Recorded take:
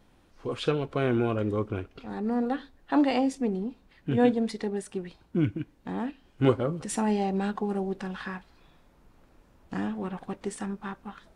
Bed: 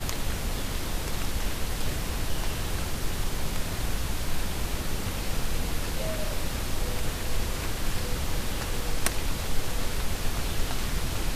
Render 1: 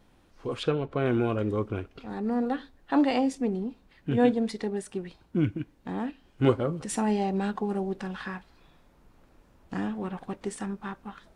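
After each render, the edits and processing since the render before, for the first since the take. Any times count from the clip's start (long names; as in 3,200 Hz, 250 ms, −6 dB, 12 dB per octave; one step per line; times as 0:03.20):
0:00.63–0:01.06: high-shelf EQ 3,700 Hz −11 dB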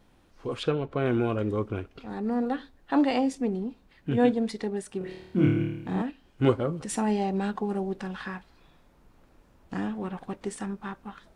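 0:04.98–0:06.02: flutter between parallel walls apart 4.6 metres, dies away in 0.84 s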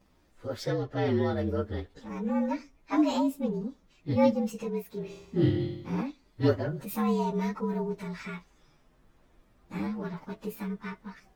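partials spread apart or drawn together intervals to 115%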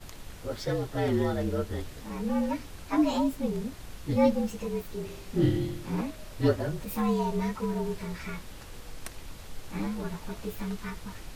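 mix in bed −14.5 dB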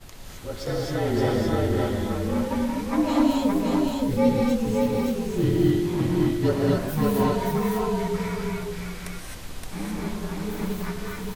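single-tap delay 570 ms −3 dB
reverb whose tail is shaped and stops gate 290 ms rising, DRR −2.5 dB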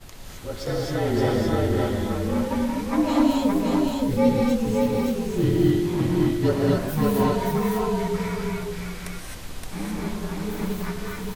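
level +1 dB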